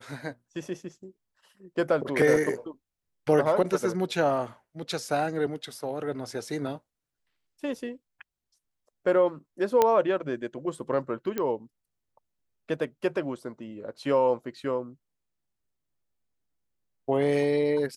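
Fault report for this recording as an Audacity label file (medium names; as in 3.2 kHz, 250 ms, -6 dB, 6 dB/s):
2.360000	2.360000	dropout 2.5 ms
9.820000	9.820000	pop -8 dBFS
11.380000	11.380000	pop -16 dBFS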